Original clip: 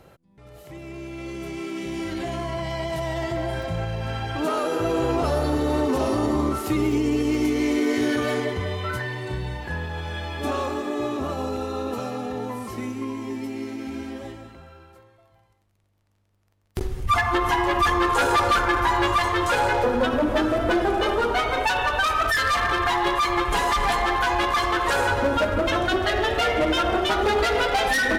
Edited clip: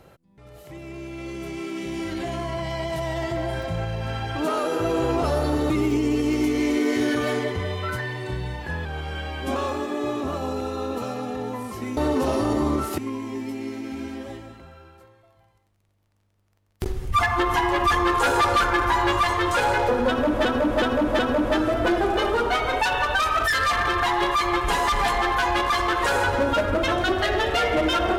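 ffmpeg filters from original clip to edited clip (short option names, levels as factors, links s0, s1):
-filter_complex "[0:a]asplit=9[s0][s1][s2][s3][s4][s5][s6][s7][s8];[s0]atrim=end=5.702[s9];[s1]atrim=start=6.708:end=9.864[s10];[s2]atrim=start=9.86:end=10.52,asetpts=PTS-STARTPTS,asetrate=41013,aresample=44100[s11];[s3]atrim=start=10.516:end=12.932[s12];[s4]atrim=start=5.698:end=6.712[s13];[s5]atrim=start=12.928:end=20.402[s14];[s6]atrim=start=20.028:end=20.402[s15];[s7]atrim=start=20.028:end=20.402[s16];[s8]atrim=start=20.028[s17];[s9][s10]acrossfade=d=0.004:c1=hsin:c2=hsin[s18];[s18][s11]acrossfade=d=0.004:c1=hsin:c2=hsin[s19];[s19][s12]acrossfade=d=0.004:c1=hsin:c2=hsin[s20];[s20][s13]acrossfade=d=0.004:c1=hsin:c2=hsin[s21];[s21][s14]acrossfade=d=0.004:c1=hsin:c2=hsin[s22];[s22][s15]acrossfade=d=0.004:c1=hsin:c2=hsin[s23];[s23][s16]acrossfade=d=0.004:c1=hsin:c2=hsin[s24];[s24][s17]acrossfade=d=0.004:c1=hsin:c2=hsin"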